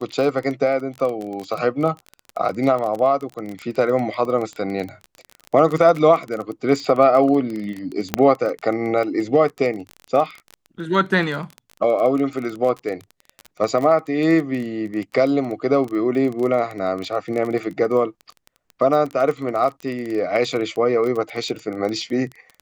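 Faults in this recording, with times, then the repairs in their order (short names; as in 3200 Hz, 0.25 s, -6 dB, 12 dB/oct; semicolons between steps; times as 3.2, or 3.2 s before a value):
crackle 23/s -25 dBFS
8.14 pop -3 dBFS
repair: de-click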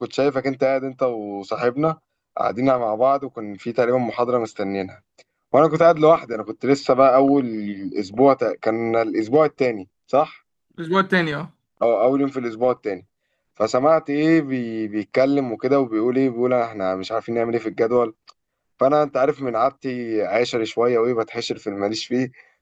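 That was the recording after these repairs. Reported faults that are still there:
none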